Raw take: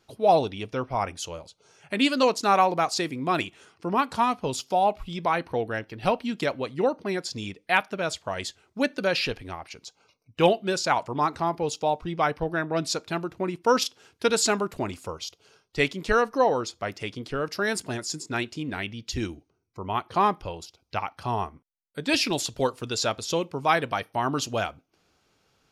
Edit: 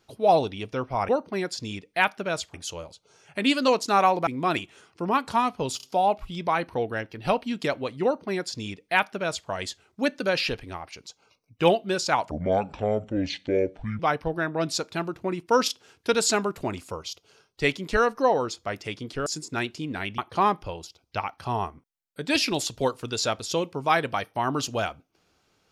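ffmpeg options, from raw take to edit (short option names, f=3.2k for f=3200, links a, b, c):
-filter_complex "[0:a]asplit=10[a][b][c][d][e][f][g][h][i][j];[a]atrim=end=1.092[k];[b]atrim=start=6.818:end=8.272[l];[c]atrim=start=1.088:end=2.822[m];[d]atrim=start=3.108:end=4.642[n];[e]atrim=start=4.608:end=4.642[o];[f]atrim=start=4.608:end=11.094[p];[g]atrim=start=11.09:end=12.15,asetpts=PTS-STARTPTS,asetrate=27783,aresample=44100[q];[h]atrim=start=12.146:end=17.422[r];[i]atrim=start=18.038:end=18.962[s];[j]atrim=start=19.968[t];[k][l]acrossfade=d=0.004:c1=hsin:c2=hsin[u];[u][m]acrossfade=d=0.004:c1=hsin:c2=hsin[v];[v][n]acrossfade=d=0.004:c1=hsin:c2=hsin[w];[w][o]acrossfade=d=0.004:c1=hsin:c2=hsin[x];[x][p]acrossfade=d=0.004:c1=hsin:c2=hsin[y];[y][q]acrossfade=d=0.004:c1=hsin:c2=hsin[z];[z][r]acrossfade=d=0.004:c1=hsin:c2=hsin[aa];[aa][s]acrossfade=d=0.004:c1=hsin:c2=hsin[ab];[ab][t]acrossfade=d=0.004:c1=hsin:c2=hsin"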